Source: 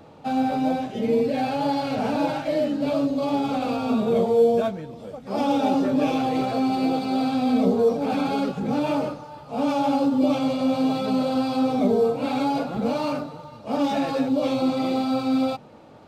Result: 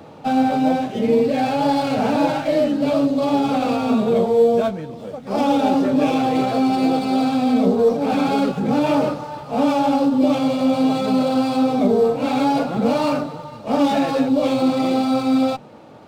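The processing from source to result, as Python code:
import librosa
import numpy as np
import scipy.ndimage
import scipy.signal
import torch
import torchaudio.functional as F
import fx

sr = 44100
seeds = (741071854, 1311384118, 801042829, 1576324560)

p1 = scipy.signal.sosfilt(scipy.signal.butter(2, 88.0, 'highpass', fs=sr, output='sos'), x)
p2 = fx.rider(p1, sr, range_db=10, speed_s=0.5)
p3 = p1 + (p2 * librosa.db_to_amplitude(1.5))
p4 = fx.running_max(p3, sr, window=3)
y = p4 * librosa.db_to_amplitude(-2.0)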